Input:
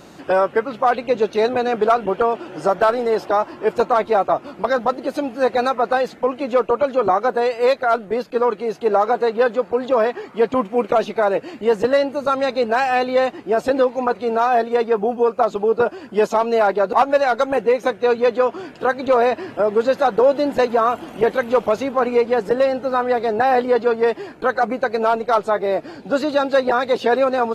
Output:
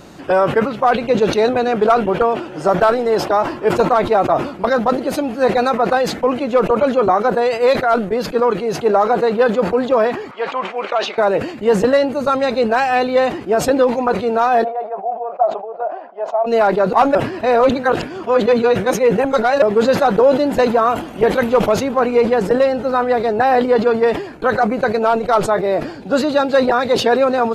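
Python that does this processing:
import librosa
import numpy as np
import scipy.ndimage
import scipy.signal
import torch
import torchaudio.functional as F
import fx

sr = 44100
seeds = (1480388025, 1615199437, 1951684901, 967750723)

y = fx.bandpass_edges(x, sr, low_hz=770.0, high_hz=4300.0, at=(10.31, 11.18))
y = fx.ladder_bandpass(y, sr, hz=740.0, resonance_pct=75, at=(14.63, 16.46), fade=0.02)
y = fx.edit(y, sr, fx.reverse_span(start_s=17.15, length_s=2.47), tone=tone)
y = fx.low_shelf(y, sr, hz=110.0, db=8.0)
y = fx.sustainer(y, sr, db_per_s=95.0)
y = F.gain(torch.from_numpy(y), 2.0).numpy()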